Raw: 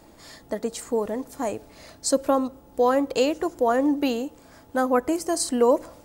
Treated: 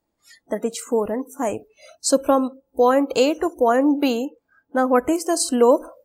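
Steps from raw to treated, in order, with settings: spectral noise reduction 29 dB; 4.25–4.95 high shelf 4400 Hz -10.5 dB; gain +4 dB

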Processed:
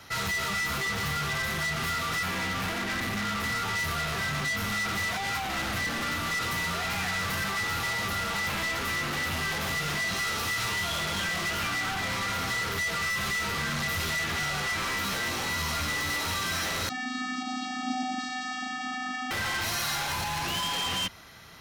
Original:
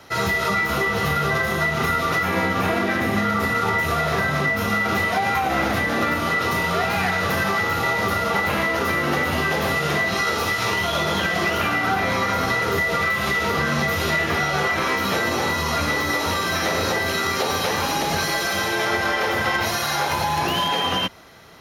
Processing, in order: hard clip -26 dBFS, distortion -7 dB; 16.89–19.31 vocoder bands 16, square 253 Hz; bell 470 Hz -9 dB 2.1 oct

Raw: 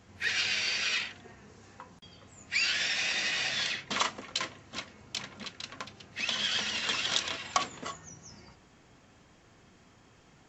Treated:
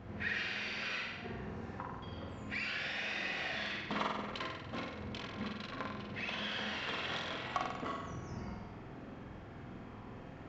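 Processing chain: compressor 2:1, threshold -48 dBFS, peak gain reduction 14.5 dB; tape spacing loss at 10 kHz 38 dB; flutter echo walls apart 8.2 m, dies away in 1 s; gain +9.5 dB

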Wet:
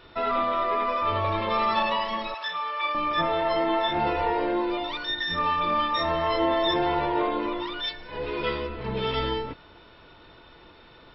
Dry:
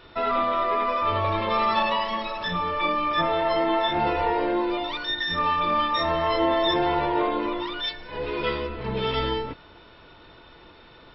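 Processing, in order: 2.34–2.95 HPF 830 Hz 12 dB/oct; gain -1.5 dB

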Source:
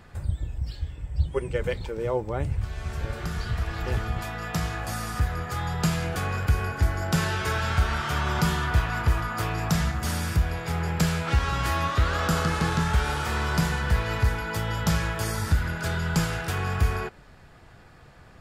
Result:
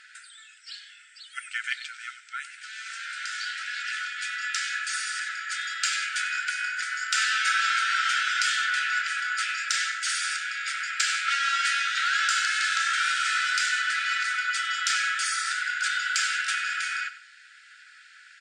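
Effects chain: FFT band-pass 1300–9400 Hz; in parallel at -11 dB: soft clip -28.5 dBFS, distortion -15 dB; on the sum: feedback echo 95 ms, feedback 23%, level -14 dB; gain +5.5 dB

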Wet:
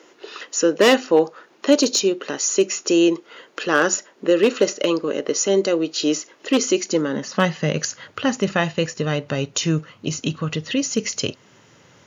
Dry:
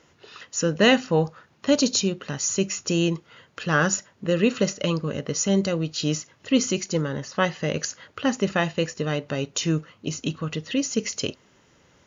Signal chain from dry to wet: one-sided fold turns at -13 dBFS; low shelf 180 Hz -8.5 dB; in parallel at -1.5 dB: compressor, threshold -35 dBFS, peak gain reduction 19 dB; on the sum: high-pass sweep 340 Hz -> 110 Hz, 6.7–7.91; gain +2 dB

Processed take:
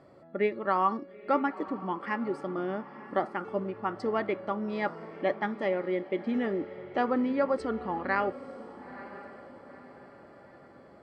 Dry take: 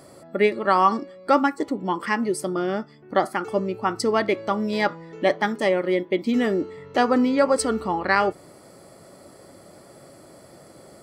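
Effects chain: LPF 2500 Hz 12 dB/oct; diffused feedback echo 0.943 s, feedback 44%, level -15 dB; gain -8 dB

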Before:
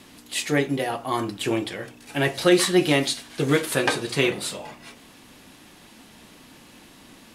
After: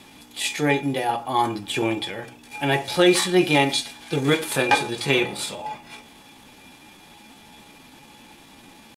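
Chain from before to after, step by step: small resonant body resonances 840/2400/3400 Hz, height 15 dB, ringing for 85 ms; tempo 0.82×

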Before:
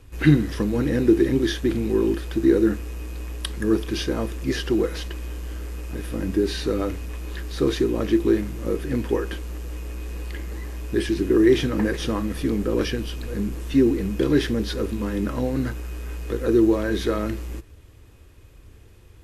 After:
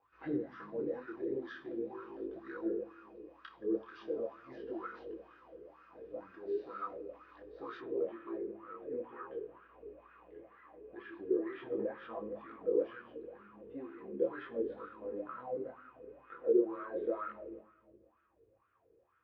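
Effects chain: notch 860 Hz, Q 27; reverb RT60 1.6 s, pre-delay 6 ms, DRR 6.5 dB; wah 2.1 Hz 420–1400 Hz, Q 9.5; LPF 5200 Hz 24 dB/oct, from 7.8 s 3200 Hz; detuned doubles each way 14 cents; gain +2.5 dB

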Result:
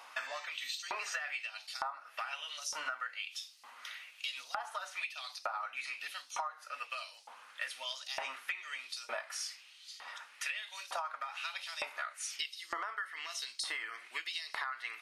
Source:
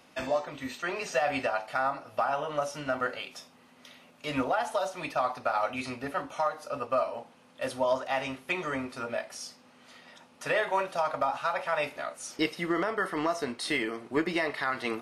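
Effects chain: LFO high-pass saw up 1.1 Hz 890–5400 Hz; compressor 16:1, threshold -39 dBFS, peak gain reduction 20.5 dB; gain +3.5 dB

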